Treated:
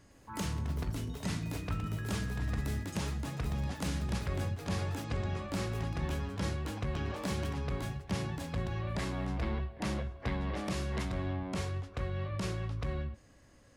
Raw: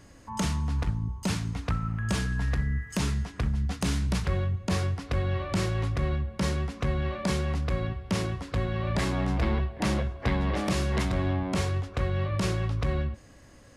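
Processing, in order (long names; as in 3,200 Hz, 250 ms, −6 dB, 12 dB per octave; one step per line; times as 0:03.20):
delay with pitch and tempo change per echo 107 ms, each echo +7 semitones, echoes 3, each echo −6 dB
0:05.04–0:05.51: low-pass filter 8,300 Hz 24 dB per octave
level −8 dB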